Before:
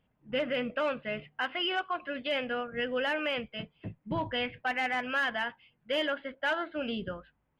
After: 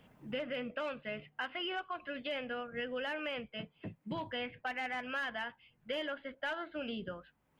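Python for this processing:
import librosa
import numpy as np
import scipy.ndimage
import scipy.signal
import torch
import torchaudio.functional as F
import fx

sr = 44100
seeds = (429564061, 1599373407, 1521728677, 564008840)

y = fx.band_squash(x, sr, depth_pct=70)
y = y * librosa.db_to_amplitude(-7.5)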